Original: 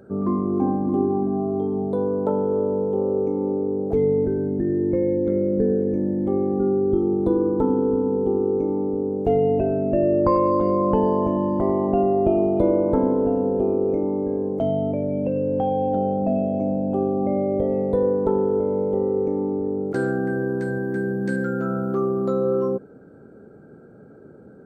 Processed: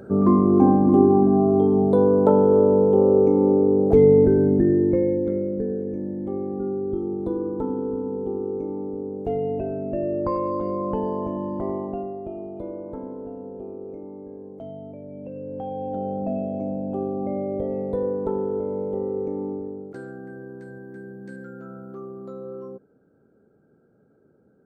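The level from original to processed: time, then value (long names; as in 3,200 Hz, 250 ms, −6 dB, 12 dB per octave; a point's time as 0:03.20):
0:04.53 +6 dB
0:05.65 −6.5 dB
0:11.75 −6.5 dB
0:12.22 −15 dB
0:15.02 −15 dB
0:16.16 −5 dB
0:19.51 −5 dB
0:20.02 −14.5 dB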